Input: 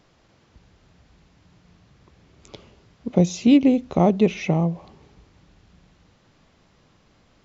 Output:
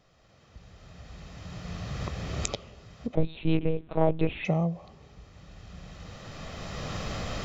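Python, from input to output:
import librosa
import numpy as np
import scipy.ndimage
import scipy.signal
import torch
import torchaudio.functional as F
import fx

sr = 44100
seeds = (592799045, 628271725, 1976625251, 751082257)

y = fx.recorder_agc(x, sr, target_db=-16.0, rise_db_per_s=13.0, max_gain_db=30)
y = y + 0.42 * np.pad(y, (int(1.6 * sr / 1000.0), 0))[:len(y)]
y = fx.lpc_monotone(y, sr, seeds[0], pitch_hz=160.0, order=8, at=(3.15, 4.45))
y = y * librosa.db_to_amplitude(-6.0)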